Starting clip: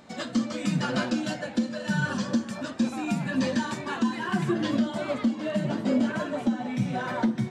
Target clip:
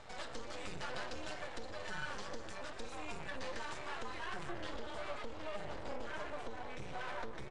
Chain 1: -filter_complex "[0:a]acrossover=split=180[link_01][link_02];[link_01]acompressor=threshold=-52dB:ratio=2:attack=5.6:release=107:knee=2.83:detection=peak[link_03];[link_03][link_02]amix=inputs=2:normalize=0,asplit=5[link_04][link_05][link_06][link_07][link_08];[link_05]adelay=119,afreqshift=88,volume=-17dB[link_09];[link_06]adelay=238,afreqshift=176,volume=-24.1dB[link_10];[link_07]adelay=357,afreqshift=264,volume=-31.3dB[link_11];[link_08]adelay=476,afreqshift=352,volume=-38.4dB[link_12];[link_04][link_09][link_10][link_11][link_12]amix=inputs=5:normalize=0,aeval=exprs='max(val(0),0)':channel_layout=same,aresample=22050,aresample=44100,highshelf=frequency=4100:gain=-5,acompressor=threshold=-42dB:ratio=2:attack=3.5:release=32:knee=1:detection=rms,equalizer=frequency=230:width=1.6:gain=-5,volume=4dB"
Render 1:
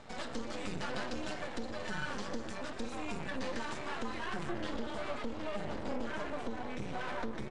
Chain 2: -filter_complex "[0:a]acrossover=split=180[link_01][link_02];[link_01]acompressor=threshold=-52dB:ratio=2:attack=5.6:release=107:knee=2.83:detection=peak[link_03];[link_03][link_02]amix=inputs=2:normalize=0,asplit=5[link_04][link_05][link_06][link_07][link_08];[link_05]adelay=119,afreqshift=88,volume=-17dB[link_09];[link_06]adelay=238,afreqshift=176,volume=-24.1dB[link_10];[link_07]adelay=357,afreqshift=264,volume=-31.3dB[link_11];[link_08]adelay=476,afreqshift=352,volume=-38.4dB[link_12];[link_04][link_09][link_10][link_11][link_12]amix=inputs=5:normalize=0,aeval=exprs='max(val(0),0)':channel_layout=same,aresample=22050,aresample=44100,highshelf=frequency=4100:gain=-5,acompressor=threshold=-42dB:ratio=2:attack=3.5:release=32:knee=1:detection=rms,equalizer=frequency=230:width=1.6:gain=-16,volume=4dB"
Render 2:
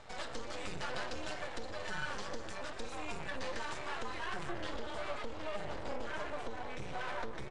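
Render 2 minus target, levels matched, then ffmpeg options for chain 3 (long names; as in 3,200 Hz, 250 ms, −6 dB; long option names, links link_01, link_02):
downward compressor: peak gain reduction −3 dB
-filter_complex "[0:a]acrossover=split=180[link_01][link_02];[link_01]acompressor=threshold=-52dB:ratio=2:attack=5.6:release=107:knee=2.83:detection=peak[link_03];[link_03][link_02]amix=inputs=2:normalize=0,asplit=5[link_04][link_05][link_06][link_07][link_08];[link_05]adelay=119,afreqshift=88,volume=-17dB[link_09];[link_06]adelay=238,afreqshift=176,volume=-24.1dB[link_10];[link_07]adelay=357,afreqshift=264,volume=-31.3dB[link_11];[link_08]adelay=476,afreqshift=352,volume=-38.4dB[link_12];[link_04][link_09][link_10][link_11][link_12]amix=inputs=5:normalize=0,aeval=exprs='max(val(0),0)':channel_layout=same,aresample=22050,aresample=44100,highshelf=frequency=4100:gain=-5,acompressor=threshold=-48dB:ratio=2:attack=3.5:release=32:knee=1:detection=rms,equalizer=frequency=230:width=1.6:gain=-16,volume=4dB"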